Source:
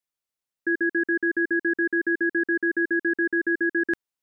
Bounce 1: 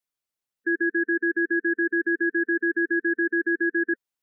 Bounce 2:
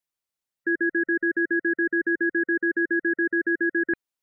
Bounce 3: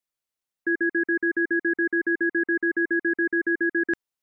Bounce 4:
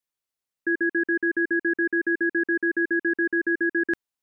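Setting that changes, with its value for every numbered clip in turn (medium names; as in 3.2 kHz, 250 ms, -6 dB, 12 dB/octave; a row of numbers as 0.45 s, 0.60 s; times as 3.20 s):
spectral gate, under each frame's peak: -15 dB, -35 dB, -50 dB, -60 dB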